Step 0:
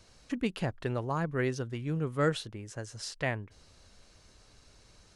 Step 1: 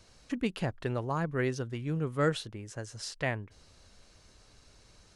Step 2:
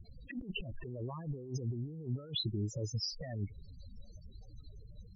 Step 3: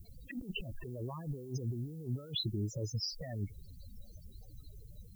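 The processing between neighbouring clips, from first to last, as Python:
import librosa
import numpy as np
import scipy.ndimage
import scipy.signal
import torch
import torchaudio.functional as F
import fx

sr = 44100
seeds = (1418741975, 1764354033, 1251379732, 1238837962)

y1 = x
y2 = fx.spec_topn(y1, sr, count=8)
y2 = fx.over_compress(y2, sr, threshold_db=-43.0, ratio=-1.0)
y2 = y2 * 10.0 ** (3.0 / 20.0)
y3 = fx.dmg_noise_colour(y2, sr, seeds[0], colour='violet', level_db=-68.0)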